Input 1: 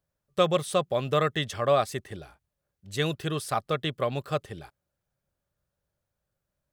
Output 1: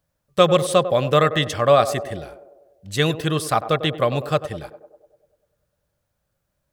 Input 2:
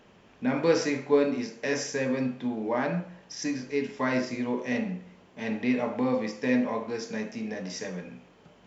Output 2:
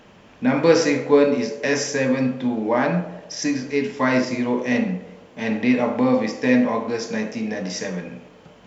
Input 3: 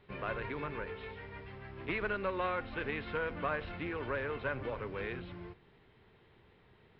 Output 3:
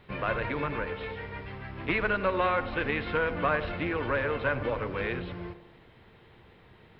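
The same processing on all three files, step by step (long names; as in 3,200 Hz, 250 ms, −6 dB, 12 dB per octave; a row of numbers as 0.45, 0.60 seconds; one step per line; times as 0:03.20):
notch filter 400 Hz, Q 12
on a send: feedback echo with a band-pass in the loop 98 ms, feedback 65%, band-pass 520 Hz, level −11 dB
on the sum: level +8 dB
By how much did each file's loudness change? +8.0, +8.0, +8.0 LU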